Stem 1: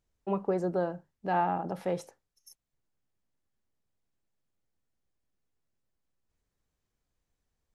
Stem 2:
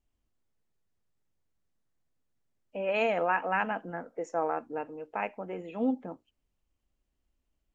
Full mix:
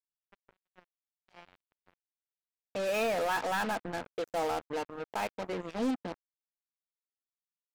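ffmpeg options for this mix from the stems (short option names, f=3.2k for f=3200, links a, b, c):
-filter_complex "[0:a]highpass=300,equalizer=f=630:t=o:w=0.33:g=6.5,volume=-19.5dB[a];[1:a]asoftclip=type=tanh:threshold=-27.5dB,volume=2dB[b];[a][b]amix=inputs=2:normalize=0,acrusher=bits=5:mix=0:aa=0.5"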